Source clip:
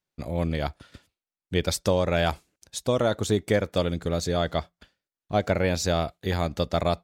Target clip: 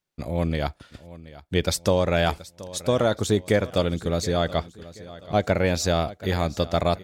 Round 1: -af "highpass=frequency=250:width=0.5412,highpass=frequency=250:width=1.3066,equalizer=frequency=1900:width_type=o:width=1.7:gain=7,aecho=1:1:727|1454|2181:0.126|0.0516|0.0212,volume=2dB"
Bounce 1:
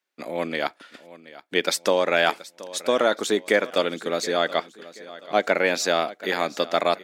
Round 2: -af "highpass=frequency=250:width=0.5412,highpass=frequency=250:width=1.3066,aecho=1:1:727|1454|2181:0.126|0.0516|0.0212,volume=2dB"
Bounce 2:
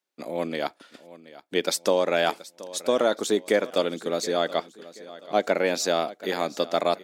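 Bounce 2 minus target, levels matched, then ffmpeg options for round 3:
250 Hz band −3.0 dB
-af "aecho=1:1:727|1454|2181:0.126|0.0516|0.0212,volume=2dB"

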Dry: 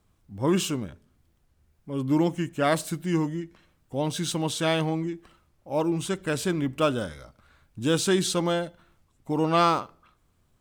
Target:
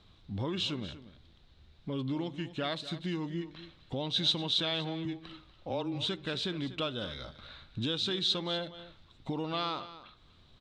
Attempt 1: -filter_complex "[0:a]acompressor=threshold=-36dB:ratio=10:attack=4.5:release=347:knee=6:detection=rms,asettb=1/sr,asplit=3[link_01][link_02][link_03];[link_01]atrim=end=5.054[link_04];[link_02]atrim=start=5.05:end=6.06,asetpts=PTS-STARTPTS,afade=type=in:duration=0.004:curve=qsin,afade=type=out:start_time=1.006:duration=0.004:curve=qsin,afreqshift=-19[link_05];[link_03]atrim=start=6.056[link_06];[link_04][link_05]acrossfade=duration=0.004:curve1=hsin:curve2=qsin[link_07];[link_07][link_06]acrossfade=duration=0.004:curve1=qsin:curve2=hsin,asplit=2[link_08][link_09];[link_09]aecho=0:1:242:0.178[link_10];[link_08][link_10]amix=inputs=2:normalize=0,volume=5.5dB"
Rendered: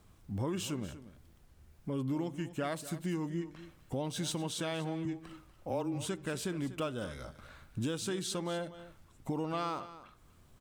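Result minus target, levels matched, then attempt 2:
4,000 Hz band −8.5 dB
-filter_complex "[0:a]acompressor=threshold=-36dB:ratio=10:attack=4.5:release=347:knee=6:detection=rms,lowpass=frequency=3800:width_type=q:width=6.4,asettb=1/sr,asplit=3[link_01][link_02][link_03];[link_01]atrim=end=5.054[link_04];[link_02]atrim=start=5.05:end=6.06,asetpts=PTS-STARTPTS,afade=type=in:duration=0.004:curve=qsin,afade=type=out:start_time=1.006:duration=0.004:curve=qsin,afreqshift=-19[link_05];[link_03]atrim=start=6.056[link_06];[link_04][link_05]acrossfade=duration=0.004:curve1=hsin:curve2=qsin[link_07];[link_07][link_06]acrossfade=duration=0.004:curve1=qsin:curve2=hsin,asplit=2[link_08][link_09];[link_09]aecho=0:1:242:0.178[link_10];[link_08][link_10]amix=inputs=2:normalize=0,volume=5.5dB"

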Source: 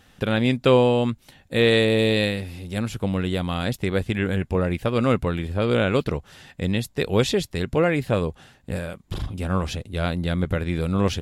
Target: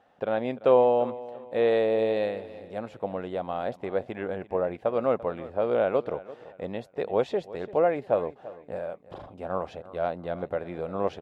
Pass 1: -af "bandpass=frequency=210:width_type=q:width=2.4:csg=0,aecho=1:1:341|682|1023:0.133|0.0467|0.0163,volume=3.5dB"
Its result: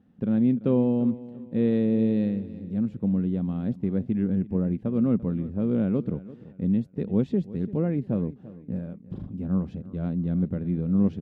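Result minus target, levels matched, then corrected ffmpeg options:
250 Hz band +11.0 dB
-af "bandpass=frequency=680:width_type=q:width=2.4:csg=0,aecho=1:1:341|682|1023:0.133|0.0467|0.0163,volume=3.5dB"

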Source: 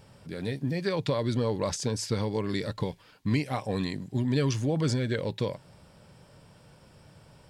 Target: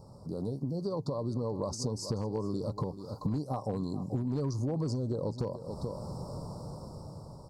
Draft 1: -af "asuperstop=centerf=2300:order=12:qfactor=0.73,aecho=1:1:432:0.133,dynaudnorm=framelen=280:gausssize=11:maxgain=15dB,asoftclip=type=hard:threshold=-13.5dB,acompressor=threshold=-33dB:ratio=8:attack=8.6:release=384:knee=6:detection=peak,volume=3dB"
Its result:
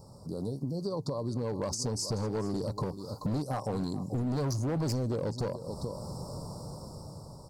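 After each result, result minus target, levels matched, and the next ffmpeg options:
hard clipping: distortion +13 dB; 8,000 Hz band +5.0 dB
-af "asuperstop=centerf=2300:order=12:qfactor=0.73,aecho=1:1:432:0.133,dynaudnorm=framelen=280:gausssize=11:maxgain=15dB,asoftclip=type=hard:threshold=-7dB,acompressor=threshold=-33dB:ratio=8:attack=8.6:release=384:knee=6:detection=peak,volume=3dB"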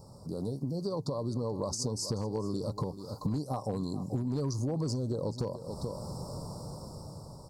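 8,000 Hz band +5.0 dB
-af "asuperstop=centerf=2300:order=12:qfactor=0.73,highshelf=frequency=4300:gain=-9,aecho=1:1:432:0.133,dynaudnorm=framelen=280:gausssize=11:maxgain=15dB,asoftclip=type=hard:threshold=-7dB,acompressor=threshold=-33dB:ratio=8:attack=8.6:release=384:knee=6:detection=peak,volume=3dB"

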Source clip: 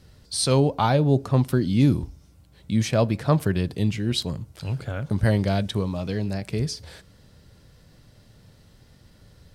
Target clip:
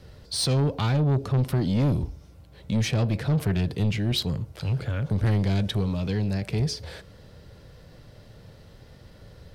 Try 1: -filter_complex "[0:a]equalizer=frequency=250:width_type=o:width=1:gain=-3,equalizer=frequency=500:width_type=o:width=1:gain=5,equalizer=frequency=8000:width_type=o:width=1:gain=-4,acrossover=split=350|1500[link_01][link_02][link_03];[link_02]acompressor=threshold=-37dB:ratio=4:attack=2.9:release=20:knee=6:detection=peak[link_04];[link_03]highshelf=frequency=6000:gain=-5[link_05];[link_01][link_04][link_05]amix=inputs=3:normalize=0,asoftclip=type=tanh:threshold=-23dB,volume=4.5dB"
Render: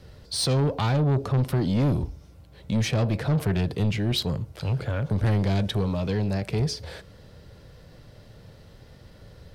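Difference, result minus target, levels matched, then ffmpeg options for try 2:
downward compressor: peak gain reduction −8.5 dB
-filter_complex "[0:a]equalizer=frequency=250:width_type=o:width=1:gain=-3,equalizer=frequency=500:width_type=o:width=1:gain=5,equalizer=frequency=8000:width_type=o:width=1:gain=-4,acrossover=split=350|1500[link_01][link_02][link_03];[link_02]acompressor=threshold=-48.5dB:ratio=4:attack=2.9:release=20:knee=6:detection=peak[link_04];[link_03]highshelf=frequency=6000:gain=-5[link_05];[link_01][link_04][link_05]amix=inputs=3:normalize=0,asoftclip=type=tanh:threshold=-23dB,volume=4.5dB"

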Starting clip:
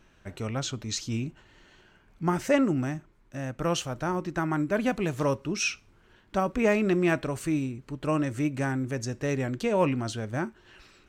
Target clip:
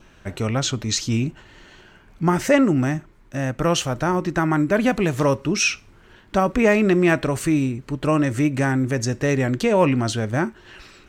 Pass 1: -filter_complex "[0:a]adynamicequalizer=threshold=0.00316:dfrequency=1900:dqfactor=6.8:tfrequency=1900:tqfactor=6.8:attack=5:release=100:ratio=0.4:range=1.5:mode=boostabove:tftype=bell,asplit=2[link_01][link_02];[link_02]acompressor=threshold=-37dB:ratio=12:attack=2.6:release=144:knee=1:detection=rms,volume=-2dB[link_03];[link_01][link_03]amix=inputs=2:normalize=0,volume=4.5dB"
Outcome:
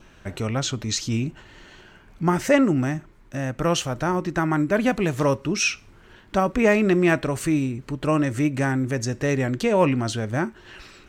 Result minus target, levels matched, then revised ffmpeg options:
downward compressor: peak gain reduction +10.5 dB
-filter_complex "[0:a]adynamicequalizer=threshold=0.00316:dfrequency=1900:dqfactor=6.8:tfrequency=1900:tqfactor=6.8:attack=5:release=100:ratio=0.4:range=1.5:mode=boostabove:tftype=bell,asplit=2[link_01][link_02];[link_02]acompressor=threshold=-25.5dB:ratio=12:attack=2.6:release=144:knee=1:detection=rms,volume=-2dB[link_03];[link_01][link_03]amix=inputs=2:normalize=0,volume=4.5dB"

